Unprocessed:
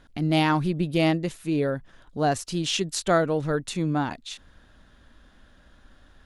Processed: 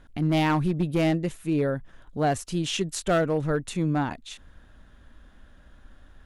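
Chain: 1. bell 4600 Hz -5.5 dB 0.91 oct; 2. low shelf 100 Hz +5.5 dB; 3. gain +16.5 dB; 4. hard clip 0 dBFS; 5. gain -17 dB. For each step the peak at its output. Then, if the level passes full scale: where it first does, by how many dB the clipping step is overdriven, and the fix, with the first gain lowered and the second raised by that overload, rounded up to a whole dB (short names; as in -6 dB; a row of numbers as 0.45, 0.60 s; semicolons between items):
-9.5, -9.5, +7.0, 0.0, -17.0 dBFS; step 3, 7.0 dB; step 3 +9.5 dB, step 5 -10 dB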